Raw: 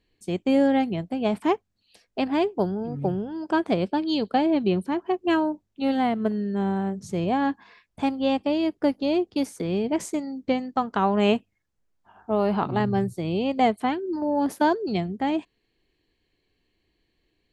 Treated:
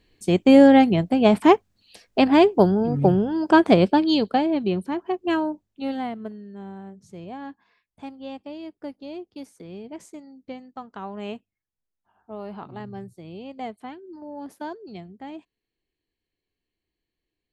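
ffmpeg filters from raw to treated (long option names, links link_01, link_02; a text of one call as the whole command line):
ffmpeg -i in.wav -af "volume=8dB,afade=type=out:start_time=3.82:duration=0.65:silence=0.354813,afade=type=out:start_time=5.53:duration=0.86:silence=0.251189" out.wav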